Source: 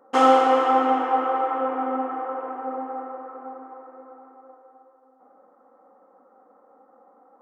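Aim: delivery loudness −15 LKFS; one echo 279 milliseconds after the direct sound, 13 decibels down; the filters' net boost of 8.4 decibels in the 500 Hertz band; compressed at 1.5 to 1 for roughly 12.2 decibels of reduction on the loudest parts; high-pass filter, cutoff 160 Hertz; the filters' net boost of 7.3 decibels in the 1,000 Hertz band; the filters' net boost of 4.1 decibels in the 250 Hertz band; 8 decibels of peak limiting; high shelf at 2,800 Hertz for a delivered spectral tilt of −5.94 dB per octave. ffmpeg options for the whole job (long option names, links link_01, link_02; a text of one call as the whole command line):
ffmpeg -i in.wav -af "highpass=160,equalizer=frequency=250:width_type=o:gain=3,equalizer=frequency=500:width_type=o:gain=6.5,equalizer=frequency=1000:width_type=o:gain=8,highshelf=frequency=2800:gain=-4.5,acompressor=threshold=-39dB:ratio=1.5,alimiter=limit=-18.5dB:level=0:latency=1,aecho=1:1:279:0.224,volume=14dB" out.wav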